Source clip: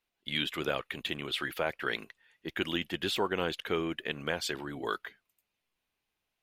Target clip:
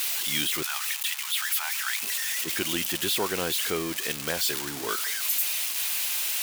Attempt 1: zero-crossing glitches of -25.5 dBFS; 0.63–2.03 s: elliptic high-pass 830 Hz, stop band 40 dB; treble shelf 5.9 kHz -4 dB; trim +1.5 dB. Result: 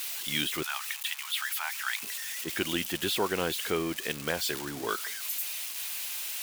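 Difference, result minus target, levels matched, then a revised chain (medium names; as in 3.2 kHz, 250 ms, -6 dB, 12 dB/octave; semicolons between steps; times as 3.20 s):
zero-crossing glitches: distortion -7 dB
zero-crossing glitches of -18 dBFS; 0.63–2.03 s: elliptic high-pass 830 Hz, stop band 40 dB; treble shelf 5.9 kHz -4 dB; trim +1.5 dB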